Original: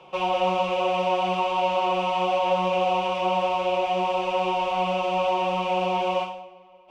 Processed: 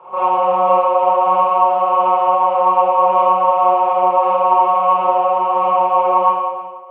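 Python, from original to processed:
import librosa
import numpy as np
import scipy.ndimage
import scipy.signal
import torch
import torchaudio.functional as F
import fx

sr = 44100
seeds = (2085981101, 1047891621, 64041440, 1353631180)

p1 = fx.highpass(x, sr, hz=410.0, slope=6)
p2 = fx.over_compress(p1, sr, threshold_db=-29.0, ratio=-0.5)
p3 = p1 + (p2 * 10.0 ** (-2.5 / 20.0))
p4 = fx.quant_companded(p3, sr, bits=8)
p5 = fx.lowpass_res(p4, sr, hz=1100.0, q=3.4)
p6 = p5 + fx.echo_multitap(p5, sr, ms=(80, 110, 316), db=(-8.5, -8.0, -11.0), dry=0)
p7 = fx.rev_schroeder(p6, sr, rt60_s=0.54, comb_ms=28, drr_db=-7.0)
y = p7 * 10.0 ** (-5.0 / 20.0)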